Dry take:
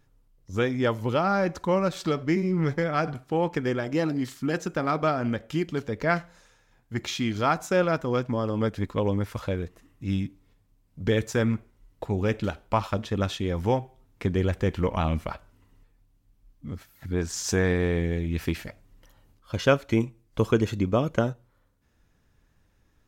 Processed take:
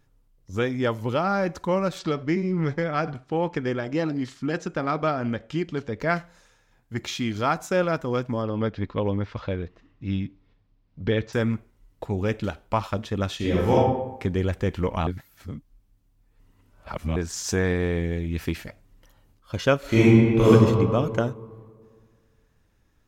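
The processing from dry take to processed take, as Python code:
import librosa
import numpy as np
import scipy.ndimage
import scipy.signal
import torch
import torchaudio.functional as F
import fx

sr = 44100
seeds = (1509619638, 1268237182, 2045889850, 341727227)

y = fx.lowpass(x, sr, hz=6300.0, slope=12, at=(1.99, 6.0))
y = fx.lowpass(y, sr, hz=4700.0, slope=24, at=(8.42, 11.33))
y = fx.reverb_throw(y, sr, start_s=13.36, length_s=0.4, rt60_s=0.86, drr_db=-6.5)
y = fx.reverb_throw(y, sr, start_s=19.79, length_s=0.72, rt60_s=2.0, drr_db=-12.0)
y = fx.edit(y, sr, fx.reverse_span(start_s=15.07, length_s=2.09), tone=tone)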